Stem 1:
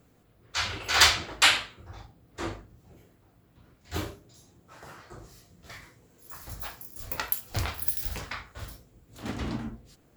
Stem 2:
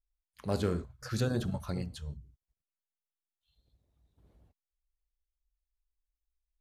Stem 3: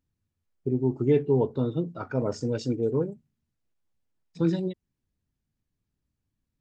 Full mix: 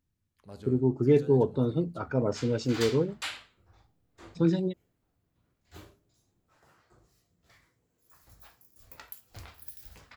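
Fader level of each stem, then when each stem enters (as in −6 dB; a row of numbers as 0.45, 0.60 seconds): −16.5, −15.0, 0.0 decibels; 1.80, 0.00, 0.00 seconds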